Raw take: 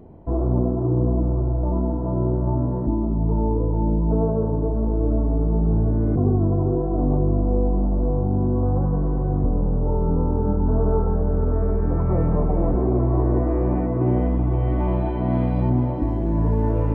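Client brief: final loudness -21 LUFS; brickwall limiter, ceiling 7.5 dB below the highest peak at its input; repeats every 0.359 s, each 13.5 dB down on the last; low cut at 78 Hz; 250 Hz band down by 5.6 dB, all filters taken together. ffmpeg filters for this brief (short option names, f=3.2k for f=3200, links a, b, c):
-af "highpass=78,equalizer=f=250:t=o:g=-8,alimiter=limit=-18.5dB:level=0:latency=1,aecho=1:1:359|718:0.211|0.0444,volume=7dB"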